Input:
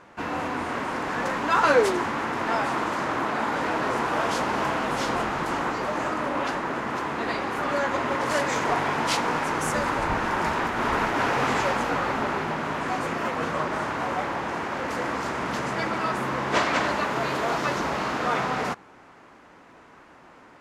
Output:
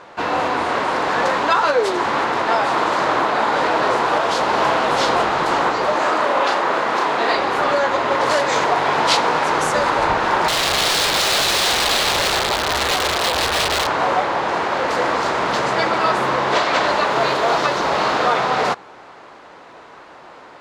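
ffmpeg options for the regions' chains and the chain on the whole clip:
-filter_complex "[0:a]asettb=1/sr,asplit=3[a][b][c];[a]atrim=end=5.984[d];[b]atrim=start=5.98:end=7.35,asetpts=PTS-STARTPTS,afade=t=in:d=0.004:c=qsin,afade=t=out:st=1.366:d=0.004:c=qsin,highpass=f=300:p=1,asplit=2[e][f];[f]adelay=35,volume=-4dB[g];[e][g]amix=inputs=2:normalize=0,atrim=end_sample=60417[h];[c]atrim=start=7.346[i];[d][h]acrossfade=d=0.004:c1=hsin:c2=qsin[j];[j][i]acrossfade=d=0.004:c1=qsin:c2=hsin,asettb=1/sr,asplit=3[k][l][m];[k]atrim=end=10.484[n];[l]atrim=start=10.48:end=13.87,asetpts=PTS-STARTPTS,afade=t=in:d=0.004:c=qsin,afade=t=out:st=3.386:d=0.004:c=qsin,lowshelf=f=100:t=q:w=3:g=12,aeval=exprs='(mod(12.6*val(0)+1,2)-1)/12.6':c=same[o];[m]atrim=start=13.866[p];[n][o]acrossfade=d=0.004:c1=hsin:c2=qsin[q];[q][p]acrossfade=d=0.004:c1=qsin:c2=hsin,equalizer=f=550:w=0.32:g=12,alimiter=limit=-7dB:level=0:latency=1:release=364,equalizer=f=250:t=o:w=1:g=-7,equalizer=f=4k:t=o:w=1:g=11,equalizer=f=8k:t=o:w=1:g=4"

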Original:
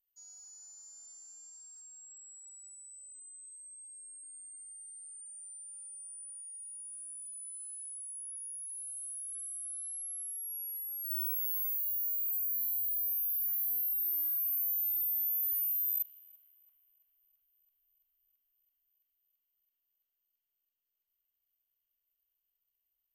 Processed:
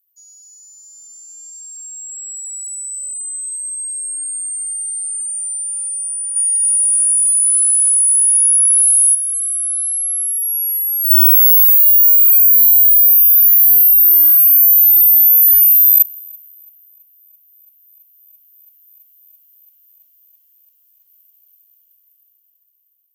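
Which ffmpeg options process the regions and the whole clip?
-filter_complex "[0:a]asettb=1/sr,asplit=3[a][b][c];[a]atrim=end=6.364[d];[b]atrim=start=6.36:end=9.15,asetpts=PTS-STARTPTS,afade=t=in:d=0.004:c=qsin,afade=t=out:st=2.786:d=0.004:c=qsin,acontrast=89,asplit=7[e][f][g][h][i][j][k];[f]adelay=270,afreqshift=-130,volume=-3.5dB[l];[g]adelay=540,afreqshift=-260,volume=-9.9dB[m];[h]adelay=810,afreqshift=-390,volume=-16.3dB[n];[i]adelay=1080,afreqshift=-520,volume=-22.6dB[o];[j]adelay=1350,afreqshift=-650,volume=-29dB[p];[k]adelay=1620,afreqshift=-780,volume=-35.4dB[q];[e][l][m][n][o][p][q]amix=inputs=7:normalize=0,atrim=end_sample=123039[r];[c]atrim=start=9.146[s];[d][r]acrossfade=d=0.004:c1=hsin:c2=qsin[t];[t][s]acrossfade=d=0.004:c1=qsin:c2=hsin,highpass=230,aemphasis=mode=production:type=75fm,dynaudnorm=f=420:g=9:m=15dB,volume=-1dB"

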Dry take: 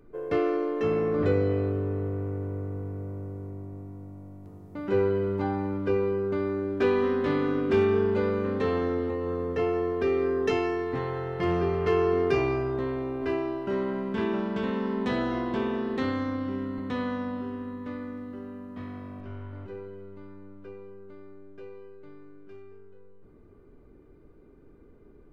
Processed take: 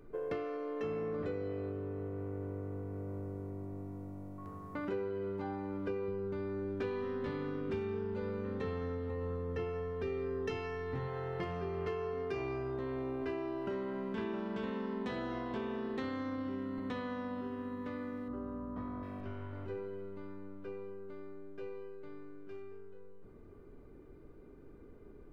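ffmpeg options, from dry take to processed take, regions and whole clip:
-filter_complex "[0:a]asettb=1/sr,asplit=3[a][b][c];[a]atrim=end=4.384[d];[b]atrim=start=4.38:end=4.85,asetpts=PTS-STARTPTS,afade=t=in:d=0.004:c=qsin,afade=t=out:st=0.466:d=0.004:c=qsin,equalizer=f=1.6k:w=1.3:g=7.5,aeval=exprs='val(0)+0.00316*sin(2*PI*1100*n/s)':c=same[e];[c]atrim=start=4.846[f];[d][e]acrossfade=d=0.004:c1=hsin:c2=qsin[g];[g][f]acrossfade=d=0.004:c1=qsin:c2=hsin,asettb=1/sr,asplit=3[h][i][j];[h]atrim=end=6.084[k];[i]atrim=start=6.08:end=11.08,asetpts=PTS-STARTPTS,afade=t=in:d=0.004:c=qsin,afade=t=out:st=4.996:d=0.004:c=qsin,lowshelf=f=270:t=q:w=1.5:g=6,aecho=1:1:2.2:0.34,atrim=end_sample=220500[l];[j]atrim=start=11.076[m];[k][l]acrossfade=d=0.004:c1=hsin:c2=qsin[n];[n][m]acrossfade=d=0.004:c1=qsin:c2=hsin,asettb=1/sr,asplit=3[o][p][q];[o]atrim=end=18.284[r];[p]atrim=start=18.28:end=19.03,asetpts=PTS-STARTPTS,afade=t=in:d=0.004:c=qsin,afade=t=out:st=0.746:d=0.004:c=qsin,highshelf=f=1.7k:t=q:w=1.5:g=-10,aeval=exprs='val(0)+0.00282*(sin(2*PI*60*n/s)+sin(2*PI*2*60*n/s)/2+sin(2*PI*3*60*n/s)/3+sin(2*PI*4*60*n/s)/4+sin(2*PI*5*60*n/s)/5)':c=same,asplit=2[s][t];[t]adelay=17,volume=-8dB[u];[s][u]amix=inputs=2:normalize=0,atrim=end_sample=33075[v];[q]atrim=start=19.026[w];[r][v]acrossfade=d=0.004:c1=hsin:c2=qsin[x];[x][w]acrossfade=d=0.004:c1=qsin:c2=hsin,acompressor=threshold=-35dB:ratio=6,bandreject=f=50:t=h:w=6,bandreject=f=100:t=h:w=6,bandreject=f=150:t=h:w=6,bandreject=f=200:t=h:w=6,bandreject=f=250:t=h:w=6,bandreject=f=300:t=h:w=6,bandreject=f=350:t=h:w=6"

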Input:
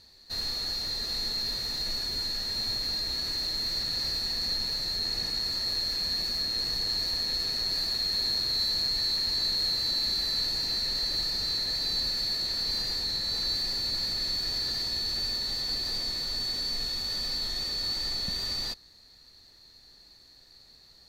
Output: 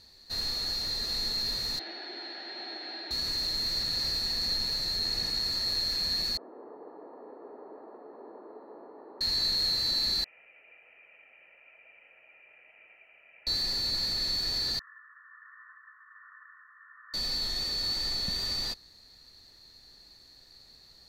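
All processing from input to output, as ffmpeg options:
-filter_complex "[0:a]asettb=1/sr,asplit=3[a][b][c];[a]atrim=end=1.794[d];[b]atrim=start=1.79:end=3.11,asetpts=PTS-STARTPTS,afade=t=in:d=0.004:c=qsin,afade=t=out:st=1.316:d=0.004:c=qsin,acrusher=bits=3:mode=log:mix=0:aa=0.000001,highpass=f=330:w=0.5412,highpass=f=330:w=1.3066,equalizer=f=340:t=q:w=4:g=10,equalizer=f=480:t=q:w=4:g=-8,equalizer=f=740:t=q:w=4:g=8,equalizer=f=1.1k:t=q:w=4:g=-10,equalizer=f=1.6k:t=q:w=4:g=3,equalizer=f=2.7k:t=q:w=4:g=-3,lowpass=f=3.2k:w=0.5412,lowpass=f=3.2k:w=1.3066[e];[c]atrim=start=3.106[f];[d][e]acrossfade=d=0.004:c1=hsin:c2=qsin[g];[g][f]acrossfade=d=0.004:c1=qsin:c2=hsin,asettb=1/sr,asplit=3[h][i][j];[h]atrim=end=6.374[k];[i]atrim=start=6.37:end=9.21,asetpts=PTS-STARTPTS,afade=t=in:d=0.004:c=qsin,afade=t=out:st=2.836:d=0.004:c=qsin,asuperpass=centerf=550:order=8:qfactor=0.67,equalizer=f=430:w=7.6:g=7.5[l];[j]atrim=start=9.206[m];[k][l]acrossfade=d=0.004:c1=hsin:c2=qsin[n];[n][m]acrossfade=d=0.004:c1=qsin:c2=hsin,asettb=1/sr,asplit=3[o][p][q];[o]atrim=end=10.244[r];[p]atrim=start=10.24:end=13.47,asetpts=PTS-STARTPTS,afade=t=in:d=0.004:c=qsin,afade=t=out:st=3.226:d=0.004:c=qsin,asplit=3[s][t][u];[s]bandpass=f=730:t=q:w=8,volume=0dB[v];[t]bandpass=f=1.09k:t=q:w=8,volume=-6dB[w];[u]bandpass=f=2.44k:t=q:w=8,volume=-9dB[x];[v][w][x]amix=inputs=3:normalize=0,lowpass=f=2.6k:t=q:w=0.5098,lowpass=f=2.6k:t=q:w=0.6013,lowpass=f=2.6k:t=q:w=0.9,lowpass=f=2.6k:t=q:w=2.563,afreqshift=-3100[y];[q]atrim=start=13.466[z];[r][y]acrossfade=d=0.004:c1=hsin:c2=qsin[aa];[aa][z]acrossfade=d=0.004:c1=qsin:c2=hsin,asettb=1/sr,asplit=3[ab][ac][ad];[ab]atrim=end=14.794[ae];[ac]atrim=start=14.79:end=17.14,asetpts=PTS-STARTPTS,afade=t=in:d=0.004:c=qsin,afade=t=out:st=2.346:d=0.004:c=qsin,tremolo=f=1.3:d=0.32,asuperpass=centerf=1400:order=20:qfactor=1.7[af];[ad]atrim=start=17.136[ag];[ae][af]acrossfade=d=0.004:c1=hsin:c2=qsin[ah];[ah][ag]acrossfade=d=0.004:c1=qsin:c2=hsin"

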